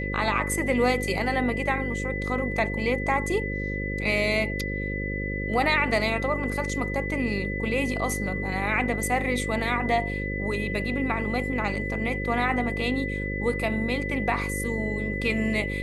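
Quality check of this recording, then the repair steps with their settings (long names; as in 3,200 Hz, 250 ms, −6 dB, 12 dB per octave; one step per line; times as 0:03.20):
mains buzz 50 Hz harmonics 11 −31 dBFS
whistle 2,000 Hz −32 dBFS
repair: notch filter 2,000 Hz, Q 30
hum removal 50 Hz, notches 11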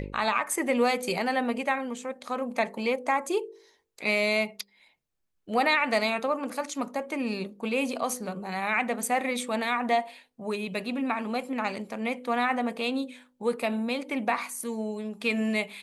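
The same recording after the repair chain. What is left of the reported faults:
none of them is left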